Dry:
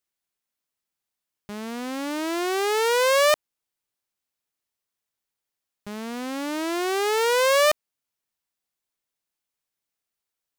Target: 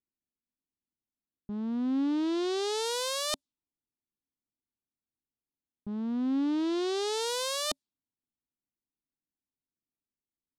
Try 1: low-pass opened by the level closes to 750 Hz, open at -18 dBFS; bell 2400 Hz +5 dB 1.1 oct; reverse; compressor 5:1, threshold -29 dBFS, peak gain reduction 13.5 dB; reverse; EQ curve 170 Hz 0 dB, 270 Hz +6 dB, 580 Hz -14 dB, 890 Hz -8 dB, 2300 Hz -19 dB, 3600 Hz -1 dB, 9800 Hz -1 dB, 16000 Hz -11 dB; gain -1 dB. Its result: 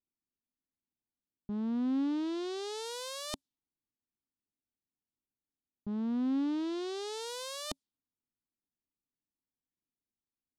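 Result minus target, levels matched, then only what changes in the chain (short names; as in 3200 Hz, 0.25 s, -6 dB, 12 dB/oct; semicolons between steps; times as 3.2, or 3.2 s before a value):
compressor: peak gain reduction +9 dB
change: compressor 5:1, threshold -18 dBFS, peak gain reduction 5 dB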